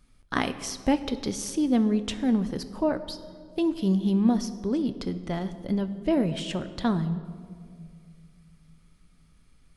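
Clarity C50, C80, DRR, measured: 13.0 dB, 14.5 dB, 10.0 dB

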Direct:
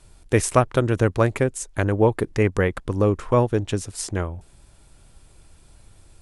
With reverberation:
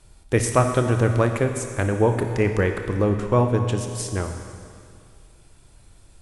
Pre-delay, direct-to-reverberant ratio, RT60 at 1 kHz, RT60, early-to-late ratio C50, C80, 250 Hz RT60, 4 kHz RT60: 25 ms, 5.0 dB, 2.2 s, 2.2 s, 6.5 dB, 7.5 dB, 2.2 s, 2.2 s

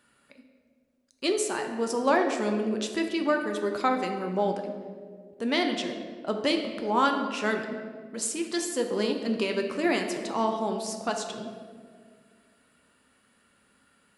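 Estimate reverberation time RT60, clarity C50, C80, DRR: 2.0 s, 6.0 dB, 7.5 dB, 3.5 dB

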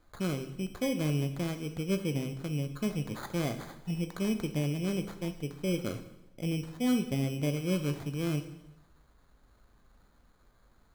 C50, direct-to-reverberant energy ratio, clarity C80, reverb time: 11.0 dB, 7.5 dB, 13.5 dB, 0.90 s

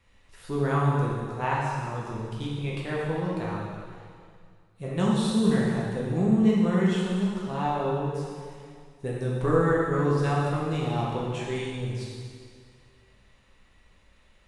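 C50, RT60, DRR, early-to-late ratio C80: -1.0 dB, 2.1 s, -5.5 dB, 1.0 dB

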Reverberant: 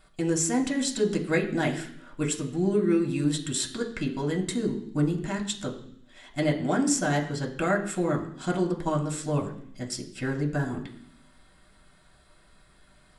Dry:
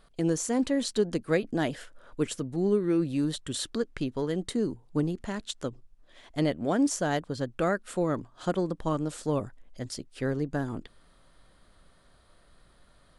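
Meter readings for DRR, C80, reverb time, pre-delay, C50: 0.0 dB, 13.5 dB, 0.65 s, 3 ms, 11.0 dB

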